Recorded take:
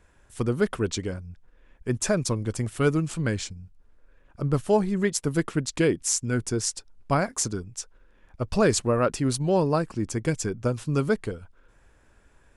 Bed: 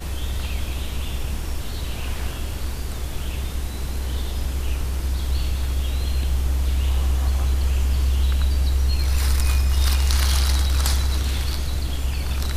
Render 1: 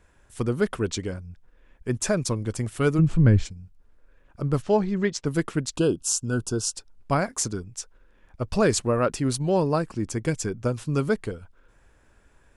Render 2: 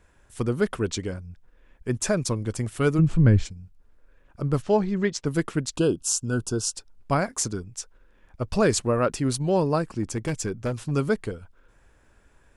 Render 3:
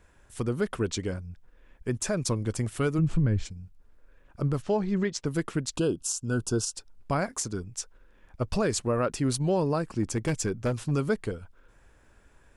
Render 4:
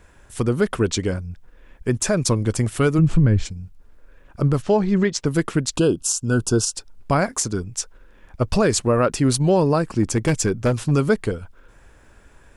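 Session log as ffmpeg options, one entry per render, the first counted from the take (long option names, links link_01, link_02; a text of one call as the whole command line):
ffmpeg -i in.wav -filter_complex "[0:a]asplit=3[link_01][link_02][link_03];[link_01]afade=type=out:start_time=2.98:duration=0.02[link_04];[link_02]aemphasis=mode=reproduction:type=riaa,afade=type=in:start_time=2.98:duration=0.02,afade=type=out:start_time=3.44:duration=0.02[link_05];[link_03]afade=type=in:start_time=3.44:duration=0.02[link_06];[link_04][link_05][link_06]amix=inputs=3:normalize=0,asettb=1/sr,asplit=3[link_07][link_08][link_09];[link_07]atrim=end=4.624[link_10];[link_08]atrim=start=4.62:end=5.26,asetpts=PTS-STARTPTS,afade=type=in:duration=0.004:curve=qsin,afade=type=out:start_time=0.636:duration=0.004:curve=qsin,lowpass=frequency=6100:width=0.5412,lowpass=frequency=6100:width=1.3066[link_11];[link_09]atrim=start=5.256[link_12];[link_10][link_11]acrossfade=duration=0.004:curve1=hsin:curve2=qsin[link_13];[link_13][link_12]acrossfade=duration=0.004:curve1=qsin:curve2=hsin,asettb=1/sr,asplit=3[link_14][link_15][link_16];[link_14]atrim=end=5.774[link_17];[link_15]atrim=start=5.77:end=6.74,asetpts=PTS-STARTPTS,afade=type=in:duration=0.004:curve=qsin,afade=type=out:start_time=0.966:duration=0.004:curve=qsin,asuperstop=centerf=2000:order=20:qfactor=2.2[link_18];[link_16]atrim=start=6.736[link_19];[link_17][link_18]acrossfade=duration=0.004:curve1=hsin:curve2=qsin[link_20];[link_20][link_19]acrossfade=duration=0.004:curve1=qsin:curve2=hsin" out.wav
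ffmpeg -i in.wav -filter_complex "[0:a]asplit=3[link_01][link_02][link_03];[link_01]afade=type=out:start_time=10.02:duration=0.02[link_04];[link_02]asoftclip=type=hard:threshold=-22dB,afade=type=in:start_time=10.02:duration=0.02,afade=type=out:start_time=10.9:duration=0.02[link_05];[link_03]afade=type=in:start_time=10.9:duration=0.02[link_06];[link_04][link_05][link_06]amix=inputs=3:normalize=0" out.wav
ffmpeg -i in.wav -af "alimiter=limit=-17.5dB:level=0:latency=1:release=210" out.wav
ffmpeg -i in.wav -af "volume=8.5dB" out.wav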